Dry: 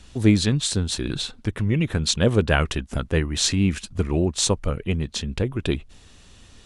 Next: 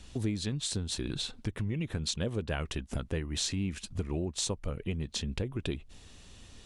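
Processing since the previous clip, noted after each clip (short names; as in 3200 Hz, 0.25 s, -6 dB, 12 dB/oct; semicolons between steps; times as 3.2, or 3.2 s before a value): bell 1400 Hz -3 dB 0.77 oct; compressor 4:1, threshold -28 dBFS, peak gain reduction 14.5 dB; gain -3 dB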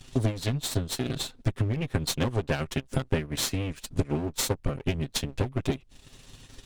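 minimum comb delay 7.6 ms; transient shaper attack +6 dB, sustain -7 dB; gain +4 dB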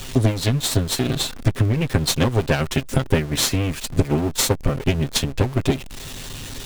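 zero-crossing step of -37.5 dBFS; gain +7.5 dB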